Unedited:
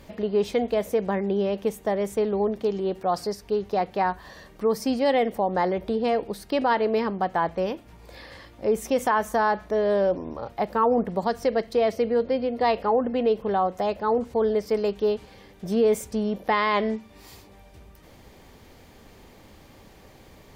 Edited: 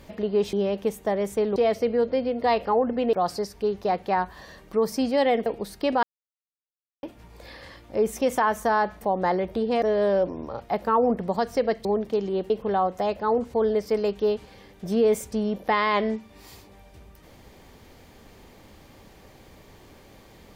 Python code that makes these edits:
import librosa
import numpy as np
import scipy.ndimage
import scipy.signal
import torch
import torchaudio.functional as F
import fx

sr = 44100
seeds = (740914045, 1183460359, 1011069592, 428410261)

y = fx.edit(x, sr, fx.cut(start_s=0.53, length_s=0.8),
    fx.swap(start_s=2.36, length_s=0.65, other_s=11.73, other_length_s=1.57),
    fx.move(start_s=5.34, length_s=0.81, to_s=9.7),
    fx.silence(start_s=6.72, length_s=1.0), tone=tone)